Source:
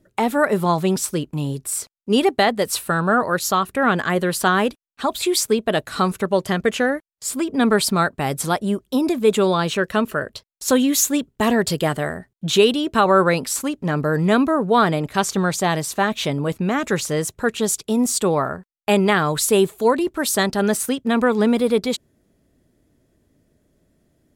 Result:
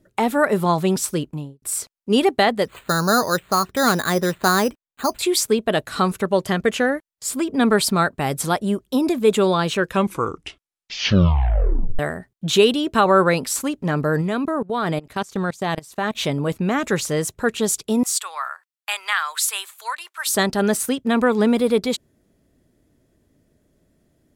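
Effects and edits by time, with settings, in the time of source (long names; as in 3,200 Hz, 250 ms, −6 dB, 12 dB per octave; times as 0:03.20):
0:01.20–0:01.62: fade out and dull
0:02.65–0:05.19: bad sample-rate conversion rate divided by 8×, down filtered, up hold
0:09.77: tape stop 2.22 s
0:14.21–0:16.15: output level in coarse steps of 22 dB
0:18.03–0:20.27: high-pass filter 1,100 Hz 24 dB per octave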